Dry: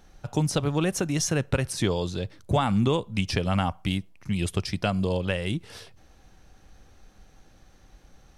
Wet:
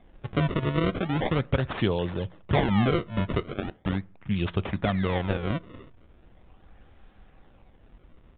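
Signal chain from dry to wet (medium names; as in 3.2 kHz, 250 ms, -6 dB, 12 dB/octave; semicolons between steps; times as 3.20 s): 3.40–3.86 s: high-pass 970 Hz 12 dB/octave; decimation with a swept rate 31×, swing 160% 0.39 Hz; on a send at -20 dB: reverberation RT60 0.50 s, pre-delay 7 ms; on the sum: resampled via 8 kHz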